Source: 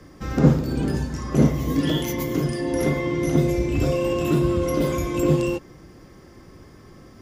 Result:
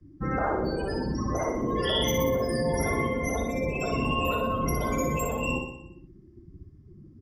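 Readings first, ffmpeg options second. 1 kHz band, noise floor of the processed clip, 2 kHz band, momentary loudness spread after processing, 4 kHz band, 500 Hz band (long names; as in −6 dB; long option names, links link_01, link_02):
+3.5 dB, −53 dBFS, +1.0 dB, 5 LU, +2.5 dB, −4.0 dB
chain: -af "afftdn=noise_reduction=34:noise_floor=-33,afftfilt=real='re*lt(hypot(re,im),0.282)':imag='im*lt(hypot(re,im),0.282)':win_size=1024:overlap=0.75,aecho=1:1:61|122|183|244|305|366|427|488:0.562|0.321|0.183|0.104|0.0594|0.0338|0.0193|0.011,volume=3dB"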